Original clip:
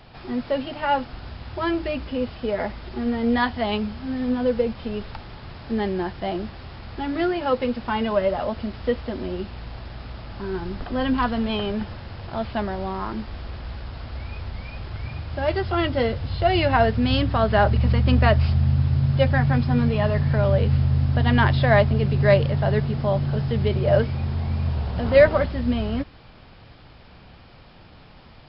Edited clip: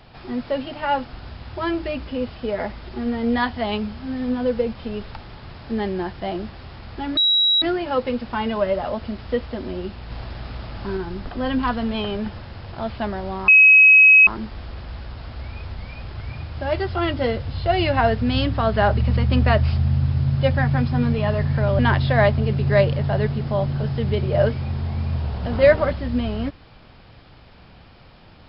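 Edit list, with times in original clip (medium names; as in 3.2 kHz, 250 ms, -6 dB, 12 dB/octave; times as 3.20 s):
7.17 s: add tone 3.87 kHz -14 dBFS 0.45 s
9.65–10.52 s: gain +3.5 dB
13.03 s: add tone 2.55 kHz -7 dBFS 0.79 s
20.55–21.32 s: delete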